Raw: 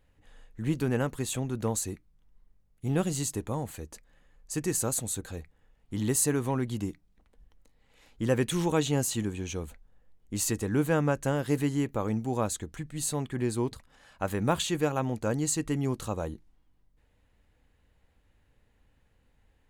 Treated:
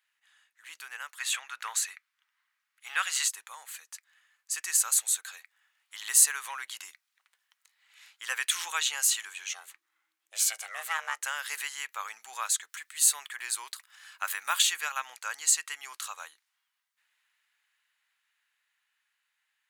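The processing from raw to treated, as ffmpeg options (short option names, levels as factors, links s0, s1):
-filter_complex "[0:a]asplit=3[s0][s1][s2];[s0]afade=t=out:st=1.18:d=0.02[s3];[s1]equalizer=f=1700:w=0.46:g=12.5,afade=t=in:st=1.18:d=0.02,afade=t=out:st=3.27:d=0.02[s4];[s2]afade=t=in:st=3.27:d=0.02[s5];[s3][s4][s5]amix=inputs=3:normalize=0,asettb=1/sr,asplit=3[s6][s7][s8];[s6]atrim=end=9.494[s9];[s7]atrim=start=9.49:end=11.22,asetpts=PTS-STARTPTS,afade=t=in:d=0.004:c=qsin,afade=t=out:st=1.726:d=0.004:c=qsin,aeval=exprs='val(0)*sin(2*PI*320*n/s)':c=same[s10];[s8]atrim=start=11.216[s11];[s9][s10]acrossfade=d=0.004:c1=hsin:c2=qsin[s12];[s12][s11]acrossfade=d=0.004:c1=qsin:c2=hsin,asettb=1/sr,asplit=3[s13][s14][s15];[s13]atrim=end=12.694[s16];[s14]atrim=start=12.69:end=14.73,asetpts=PTS-STARTPTS,afade=t=in:d=0.004:c=qsin,afade=t=out:st=2.036:d=0.004:c=qsin,highshelf=f=12000:g=9.5[s17];[s15]atrim=start=14.726[s18];[s16][s17]acrossfade=d=0.004:c1=hsin:c2=qsin[s19];[s19][s18]acrossfade=d=0.004:c1=qsin:c2=hsin,highpass=f=1300:w=0.5412,highpass=f=1300:w=1.3066,dynaudnorm=f=690:g=11:m=2.37"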